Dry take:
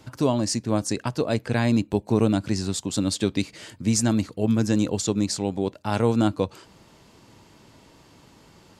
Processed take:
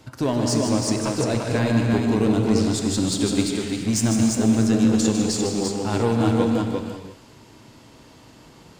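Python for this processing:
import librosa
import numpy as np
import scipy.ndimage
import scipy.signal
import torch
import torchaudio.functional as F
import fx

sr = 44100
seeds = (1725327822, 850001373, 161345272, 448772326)

p1 = 10.0 ** (-22.5 / 20.0) * (np.abs((x / 10.0 ** (-22.5 / 20.0) + 3.0) % 4.0 - 2.0) - 1.0)
p2 = x + (p1 * librosa.db_to_amplitude(-9.0))
p3 = fx.echo_multitap(p2, sr, ms=(153, 345), db=(-7.5, -4.0))
p4 = fx.rev_gated(p3, sr, seeds[0], gate_ms=370, shape='flat', drr_db=3.5)
y = p4 * librosa.db_to_amplitude(-2.0)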